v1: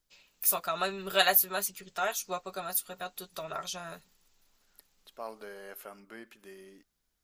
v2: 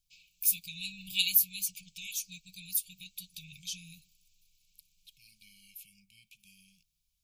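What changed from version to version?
master: add brick-wall FIR band-stop 190–2200 Hz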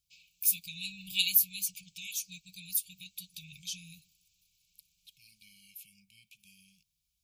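master: add HPF 47 Hz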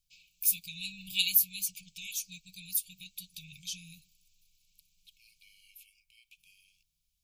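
second voice: add rippled Chebyshev high-pass 660 Hz, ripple 6 dB; master: remove HPF 47 Hz

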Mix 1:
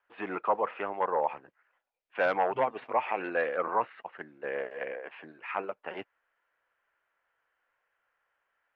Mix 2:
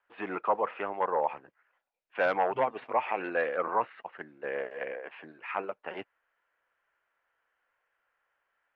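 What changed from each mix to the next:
none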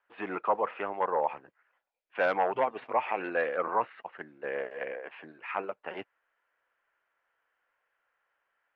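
second voice -4.0 dB

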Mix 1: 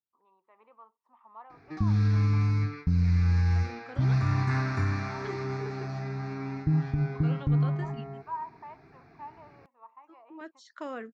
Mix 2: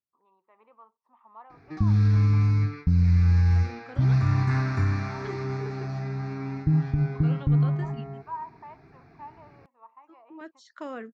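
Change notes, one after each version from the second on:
master: add low shelf 210 Hz +5 dB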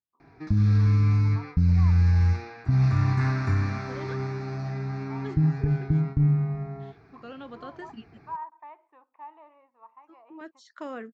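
background: entry -1.30 s

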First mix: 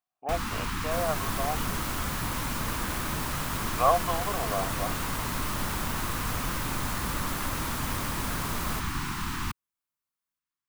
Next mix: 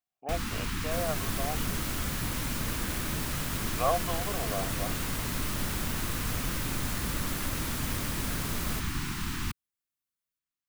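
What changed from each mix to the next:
master: add bell 1000 Hz -8 dB 1.1 oct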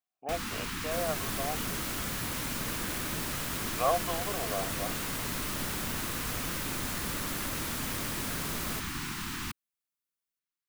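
first sound: add low shelf 140 Hz -11 dB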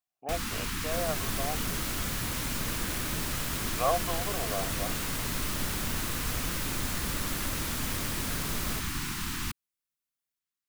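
first sound: add bell 12000 Hz +4 dB 2.5 oct; master: add low shelf 88 Hz +9 dB

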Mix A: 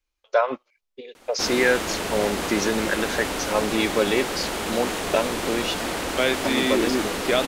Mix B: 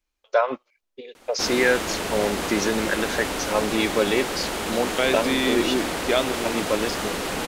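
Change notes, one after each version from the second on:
second voice: entry -1.20 s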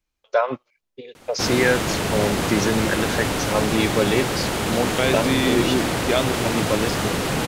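background +3.0 dB; master: add bell 120 Hz +14.5 dB 1 oct

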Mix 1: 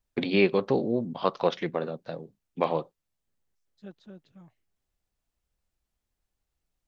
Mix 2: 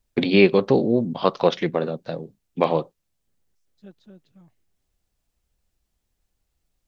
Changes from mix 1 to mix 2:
first voice +8.0 dB; master: add bell 1200 Hz -3.5 dB 2.2 oct

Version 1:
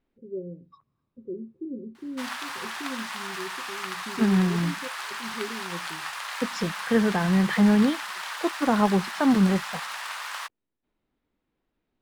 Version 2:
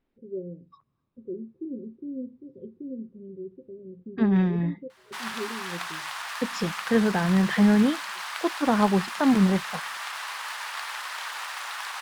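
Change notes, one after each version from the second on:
background: entry +2.95 s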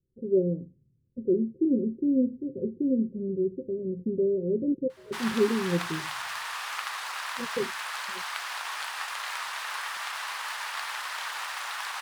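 first voice +11.0 dB; second voice: muted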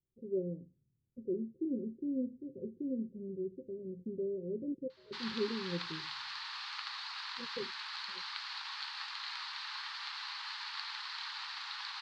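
background: add steep high-pass 780 Hz 96 dB/oct; master: add ladder low-pass 4700 Hz, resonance 70%

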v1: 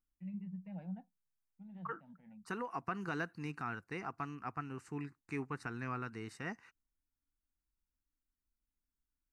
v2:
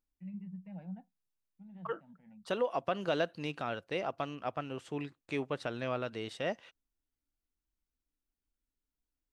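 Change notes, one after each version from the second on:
second voice: remove fixed phaser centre 1400 Hz, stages 4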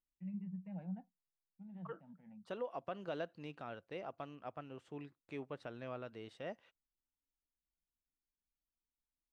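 second voice -9.5 dB; master: add high shelf 2900 Hz -8.5 dB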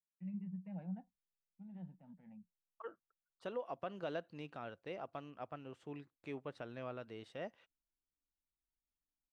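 second voice: entry +0.95 s

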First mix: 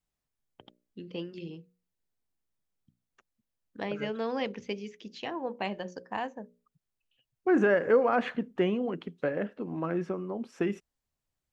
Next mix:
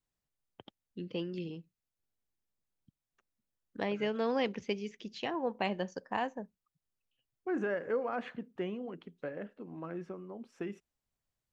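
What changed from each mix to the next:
first voice: remove notches 60/120/180/240/300/360/420/480/540/600 Hz; second voice -10.0 dB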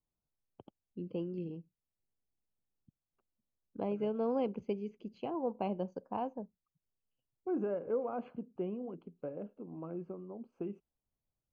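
master: add running mean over 24 samples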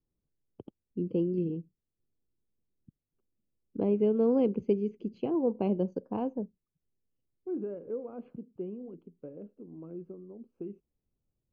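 second voice -10.0 dB; master: add resonant low shelf 550 Hz +8 dB, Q 1.5

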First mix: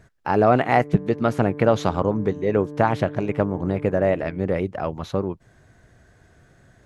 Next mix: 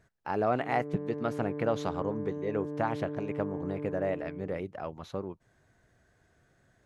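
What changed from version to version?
speech -10.5 dB; master: add low shelf 220 Hz -4.5 dB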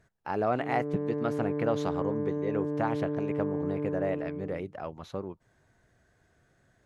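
background +5.5 dB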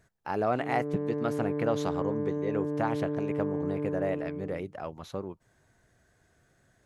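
master: add high shelf 7000 Hz +9 dB

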